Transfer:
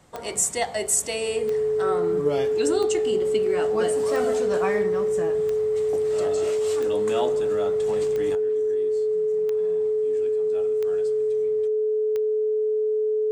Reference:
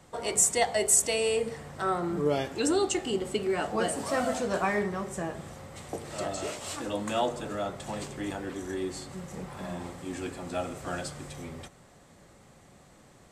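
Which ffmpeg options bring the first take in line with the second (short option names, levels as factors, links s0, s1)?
-af "adeclick=t=4,bandreject=f=430:w=30,asetnsamples=n=441:p=0,asendcmd='8.35 volume volume 11.5dB',volume=1"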